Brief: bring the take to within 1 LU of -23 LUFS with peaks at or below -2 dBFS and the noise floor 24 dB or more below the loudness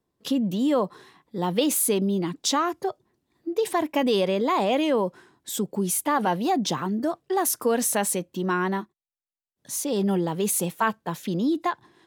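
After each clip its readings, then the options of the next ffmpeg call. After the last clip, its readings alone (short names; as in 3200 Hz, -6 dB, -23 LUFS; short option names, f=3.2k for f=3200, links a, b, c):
loudness -25.0 LUFS; peak -9.5 dBFS; loudness target -23.0 LUFS
-> -af "volume=2dB"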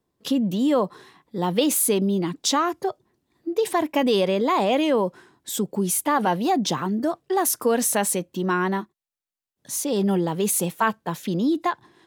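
loudness -23.0 LUFS; peak -7.5 dBFS; noise floor -90 dBFS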